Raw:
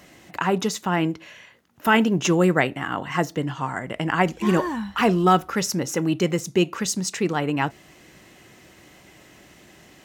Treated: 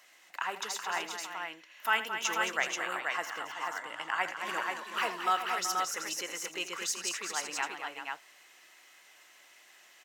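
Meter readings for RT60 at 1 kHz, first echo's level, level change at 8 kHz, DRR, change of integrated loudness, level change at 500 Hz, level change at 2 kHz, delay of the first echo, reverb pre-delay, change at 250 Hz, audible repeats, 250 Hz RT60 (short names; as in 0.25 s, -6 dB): none, -13.0 dB, -4.5 dB, none, -10.5 dB, -18.0 dB, -5.0 dB, 83 ms, none, -27.0 dB, 4, none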